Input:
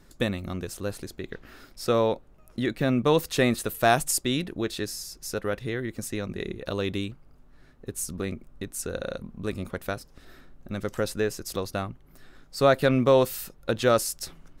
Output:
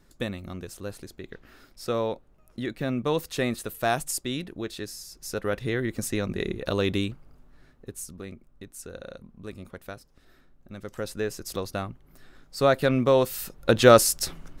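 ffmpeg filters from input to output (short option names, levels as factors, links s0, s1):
-af "volume=8.91,afade=t=in:st=5.07:d=0.74:silence=0.398107,afade=t=out:st=7.06:d=1.09:silence=0.251189,afade=t=in:st=10.81:d=0.64:silence=0.421697,afade=t=in:st=13.29:d=0.49:silence=0.398107"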